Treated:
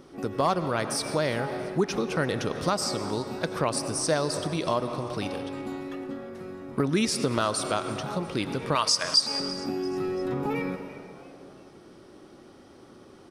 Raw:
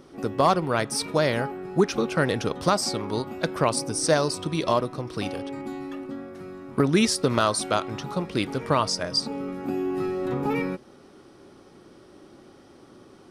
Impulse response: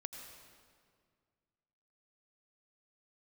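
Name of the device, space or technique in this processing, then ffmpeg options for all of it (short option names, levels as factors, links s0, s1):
ducked reverb: -filter_complex "[0:a]asettb=1/sr,asplit=3[s0][s1][s2];[s0]atrim=end=8.754[s3];[s1]atrim=start=8.75:end=9.4,asetpts=PTS-STARTPTS,afade=t=in:d=0.004:c=qsin,afade=t=out:st=0.646:d=0.004:c=qsin,tiltshelf=f=770:g=-9.5[s4];[s2]atrim=start=9.396[s5];[s3][s4]acrossfade=d=0.004:c1=hsin:c2=qsin[s6];[s6][s5]acrossfade=d=0.004:c1=qsin:c2=hsin,asplit=4[s7][s8][s9][s10];[s8]adelay=341,afreqshift=120,volume=0.0794[s11];[s9]adelay=682,afreqshift=240,volume=0.038[s12];[s10]adelay=1023,afreqshift=360,volume=0.0182[s13];[s7][s11][s12][s13]amix=inputs=4:normalize=0,asplit=3[s14][s15][s16];[1:a]atrim=start_sample=2205[s17];[s15][s17]afir=irnorm=-1:irlink=0[s18];[s16]apad=whole_len=632059[s19];[s18][s19]sidechaincompress=threshold=0.0355:ratio=8:attack=21:release=101,volume=1.58[s20];[s14][s20]amix=inputs=2:normalize=0,volume=0.473"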